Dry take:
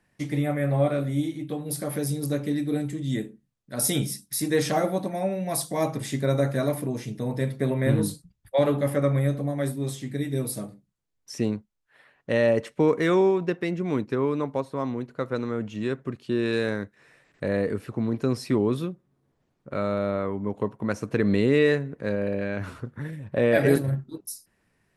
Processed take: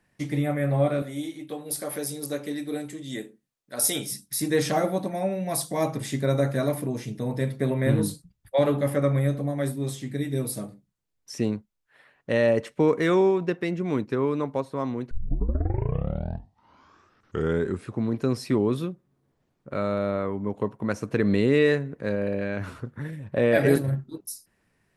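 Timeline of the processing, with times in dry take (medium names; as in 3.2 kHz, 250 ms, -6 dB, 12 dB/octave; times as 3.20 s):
1.02–4.12 s: tone controls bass -14 dB, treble +2 dB
15.11 s: tape start 2.91 s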